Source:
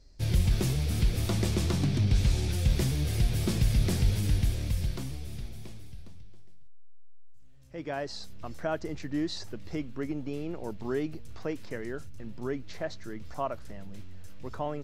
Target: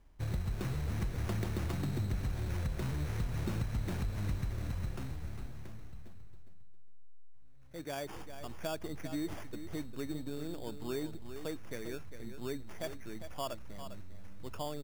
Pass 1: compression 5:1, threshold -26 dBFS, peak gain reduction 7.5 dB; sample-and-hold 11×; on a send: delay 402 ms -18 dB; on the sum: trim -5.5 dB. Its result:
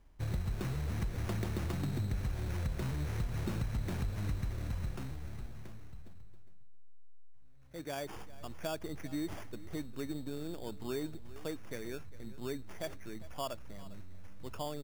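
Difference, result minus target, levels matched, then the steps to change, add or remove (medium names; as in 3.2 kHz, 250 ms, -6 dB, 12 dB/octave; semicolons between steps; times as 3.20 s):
echo-to-direct -8 dB
change: delay 402 ms -10 dB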